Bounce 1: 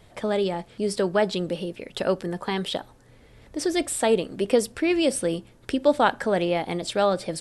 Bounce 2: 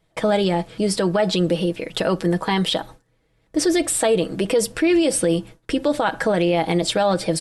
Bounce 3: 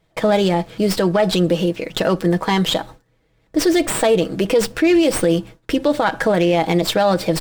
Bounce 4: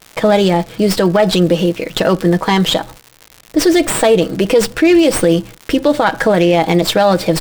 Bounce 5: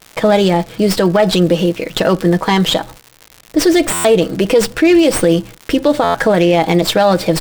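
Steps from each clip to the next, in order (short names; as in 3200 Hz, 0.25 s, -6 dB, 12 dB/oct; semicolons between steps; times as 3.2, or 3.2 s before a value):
gate with hold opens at -40 dBFS; comb 6.2 ms, depth 52%; limiter -18 dBFS, peak gain reduction 11 dB; gain +7.5 dB
running maximum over 3 samples; gain +3 dB
crackle 160/s -28 dBFS; gain +4.5 dB
stuck buffer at 3.93/6.03, samples 512, times 9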